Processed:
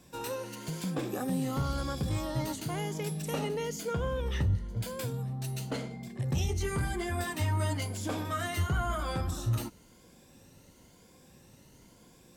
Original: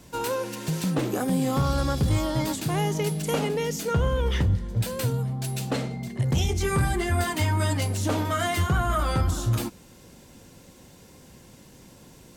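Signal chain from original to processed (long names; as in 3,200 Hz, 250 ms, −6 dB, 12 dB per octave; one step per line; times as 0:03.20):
rippled gain that drifts along the octave scale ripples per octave 1.8, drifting +0.98 Hz, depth 7 dB
level −8 dB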